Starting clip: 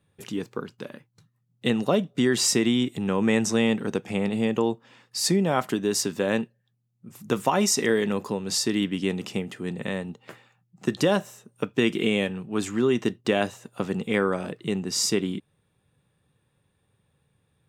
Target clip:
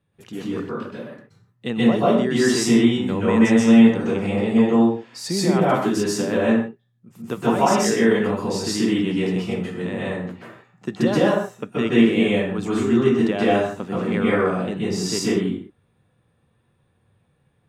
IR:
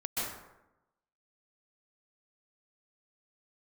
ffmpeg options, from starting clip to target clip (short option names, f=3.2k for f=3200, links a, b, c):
-filter_complex "[0:a]highshelf=f=4.7k:g=-8[a];[1:a]atrim=start_sample=2205,afade=t=out:st=0.36:d=0.01,atrim=end_sample=16317[b];[a][b]afir=irnorm=-1:irlink=0"